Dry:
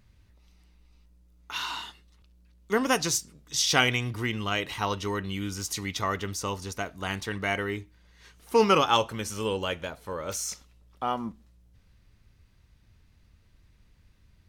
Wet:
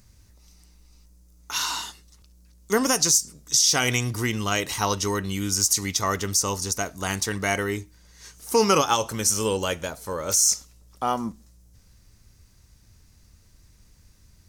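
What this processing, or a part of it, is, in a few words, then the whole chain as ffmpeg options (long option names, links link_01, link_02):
over-bright horn tweeter: -af "highshelf=frequency=4400:width_type=q:width=1.5:gain=10,alimiter=limit=-13dB:level=0:latency=1:release=116,volume=4.5dB"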